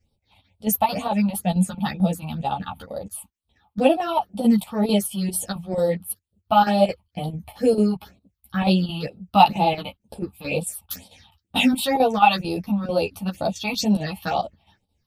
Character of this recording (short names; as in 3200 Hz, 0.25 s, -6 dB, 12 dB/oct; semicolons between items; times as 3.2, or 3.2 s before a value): phasing stages 6, 2.1 Hz, lowest notch 430–1900 Hz; chopped level 4.5 Hz, depth 65%, duty 80%; a shimmering, thickened sound